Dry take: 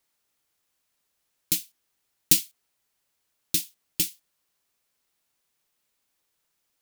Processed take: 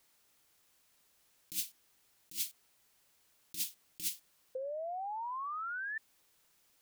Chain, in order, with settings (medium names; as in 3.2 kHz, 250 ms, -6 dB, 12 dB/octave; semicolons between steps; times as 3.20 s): painted sound rise, 4.55–5.98 s, 510–1800 Hz -27 dBFS; compressor with a negative ratio -36 dBFS, ratio -1; trim -3.5 dB